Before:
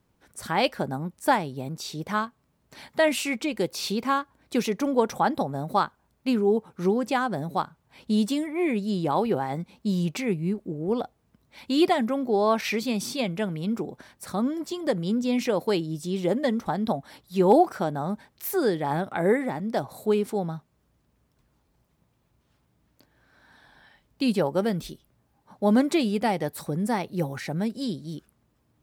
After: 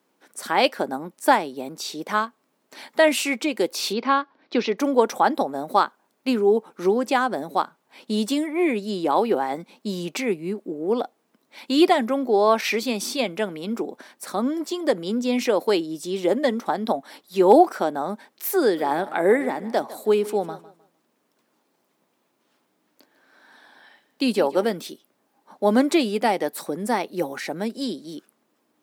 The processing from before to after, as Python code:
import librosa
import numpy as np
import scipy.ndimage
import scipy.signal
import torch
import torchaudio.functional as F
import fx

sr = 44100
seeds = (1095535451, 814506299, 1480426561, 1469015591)

y = fx.steep_lowpass(x, sr, hz=5100.0, slope=36, at=(3.93, 4.78))
y = fx.echo_feedback(y, sr, ms=154, feedback_pct=27, wet_db=-17.0, at=(18.76, 24.71), fade=0.02)
y = scipy.signal.sosfilt(scipy.signal.butter(4, 250.0, 'highpass', fs=sr, output='sos'), y)
y = F.gain(torch.from_numpy(y), 4.5).numpy()